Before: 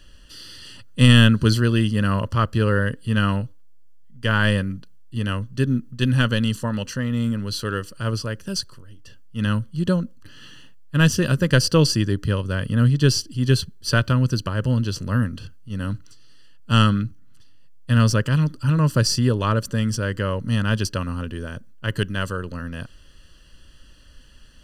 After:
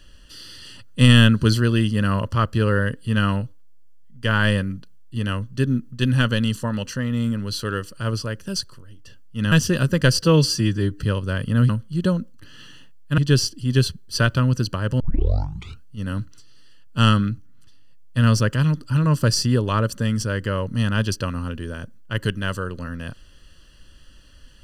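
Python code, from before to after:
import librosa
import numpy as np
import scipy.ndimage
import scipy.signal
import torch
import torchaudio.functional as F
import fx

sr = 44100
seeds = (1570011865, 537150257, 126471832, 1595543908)

y = fx.edit(x, sr, fx.move(start_s=9.52, length_s=1.49, to_s=12.91),
    fx.stretch_span(start_s=11.71, length_s=0.54, factor=1.5),
    fx.tape_start(start_s=14.73, length_s=0.83), tone=tone)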